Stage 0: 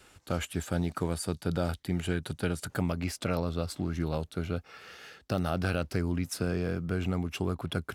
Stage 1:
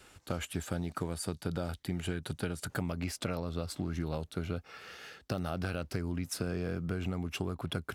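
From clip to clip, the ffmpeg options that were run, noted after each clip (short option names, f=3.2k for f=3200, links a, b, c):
-af "acompressor=threshold=-30dB:ratio=6"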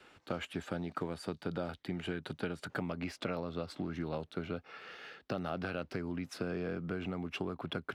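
-filter_complex "[0:a]acrossover=split=160 4300:gain=0.224 1 0.141[a][b][c];[a][b][c]amix=inputs=3:normalize=0"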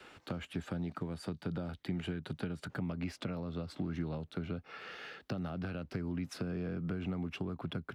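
-filter_complex "[0:a]acrossover=split=230[a][b];[b]acompressor=threshold=-48dB:ratio=4[c];[a][c]amix=inputs=2:normalize=0,volume=4.5dB"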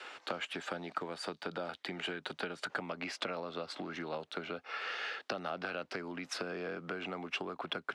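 -af "highpass=570,lowpass=7.5k,volume=8.5dB"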